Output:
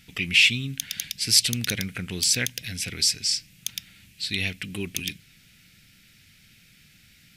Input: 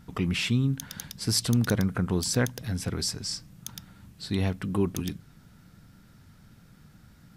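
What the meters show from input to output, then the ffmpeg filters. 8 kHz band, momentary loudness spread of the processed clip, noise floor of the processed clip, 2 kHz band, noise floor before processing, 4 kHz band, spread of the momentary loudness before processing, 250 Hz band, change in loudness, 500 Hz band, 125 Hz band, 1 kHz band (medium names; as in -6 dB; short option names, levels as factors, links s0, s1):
+8.0 dB, 15 LU, -56 dBFS, +11.0 dB, -56 dBFS, +10.0 dB, 17 LU, -7.0 dB, +4.5 dB, -7.5 dB, -6.5 dB, -9.5 dB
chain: -af "highshelf=f=1600:t=q:w=3:g=14,volume=0.473"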